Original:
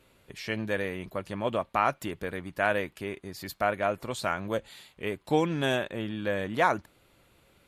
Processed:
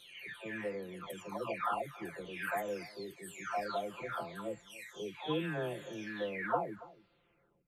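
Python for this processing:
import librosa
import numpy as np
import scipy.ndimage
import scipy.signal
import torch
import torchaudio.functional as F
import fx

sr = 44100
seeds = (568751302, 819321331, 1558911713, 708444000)

y = fx.spec_delay(x, sr, highs='early', ms=916)
y = fx.low_shelf(y, sr, hz=120.0, db=-6.5)
y = y + 10.0 ** (-19.5 / 20.0) * np.pad(y, (int(282 * sr / 1000.0), 0))[:len(y)]
y = y * librosa.db_to_amplitude(-6.0)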